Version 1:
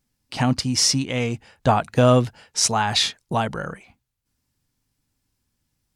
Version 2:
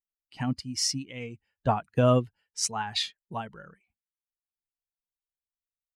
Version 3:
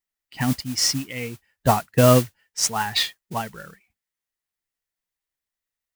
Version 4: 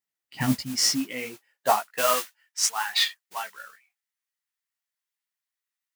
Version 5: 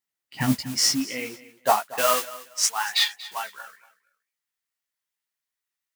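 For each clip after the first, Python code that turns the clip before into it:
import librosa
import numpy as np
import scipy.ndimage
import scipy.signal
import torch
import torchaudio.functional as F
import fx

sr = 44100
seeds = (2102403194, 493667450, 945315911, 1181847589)

y1 = fx.bin_expand(x, sr, power=1.5)
y1 = fx.upward_expand(y1, sr, threshold_db=-28.0, expansion=1.5)
y1 = y1 * 10.0 ** (-4.5 / 20.0)
y2 = fx.peak_eq(y1, sr, hz=1900.0, db=8.5, octaves=0.27)
y2 = fx.mod_noise(y2, sr, seeds[0], snr_db=13)
y2 = y2 * 10.0 ** (6.5 / 20.0)
y3 = fx.chorus_voices(y2, sr, voices=4, hz=1.2, base_ms=17, depth_ms=3.0, mix_pct=40)
y3 = fx.filter_sweep_highpass(y3, sr, from_hz=110.0, to_hz=1100.0, start_s=0.48, end_s=2.15, q=0.88)
y3 = y3 * 10.0 ** (1.5 / 20.0)
y4 = fx.echo_feedback(y3, sr, ms=235, feedback_pct=24, wet_db=-18)
y4 = y4 * 10.0 ** (1.5 / 20.0)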